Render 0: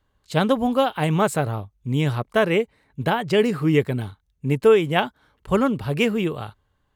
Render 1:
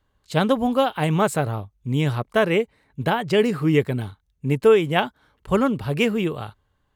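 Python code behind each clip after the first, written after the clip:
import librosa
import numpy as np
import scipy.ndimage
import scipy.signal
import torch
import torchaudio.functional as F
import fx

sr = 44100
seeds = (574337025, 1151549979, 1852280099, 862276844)

y = x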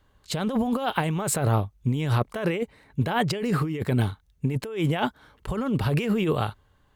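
y = fx.over_compress(x, sr, threshold_db=-26.0, ratio=-1.0)
y = y * librosa.db_to_amplitude(1.0)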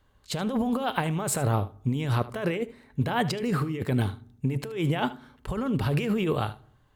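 y = x + 10.0 ** (-17.0 / 20.0) * np.pad(x, (int(76 * sr / 1000.0), 0))[:len(x)]
y = fx.rev_fdn(y, sr, rt60_s=0.64, lf_ratio=1.4, hf_ratio=0.65, size_ms=23.0, drr_db=19.0)
y = y * librosa.db_to_amplitude(-2.0)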